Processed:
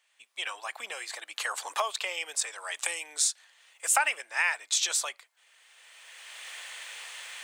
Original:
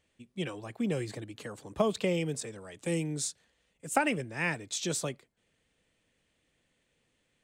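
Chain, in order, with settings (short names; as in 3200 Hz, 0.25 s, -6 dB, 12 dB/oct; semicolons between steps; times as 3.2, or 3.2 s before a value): recorder AGC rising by 20 dB/s; HPF 850 Hz 24 dB/oct; gain +5 dB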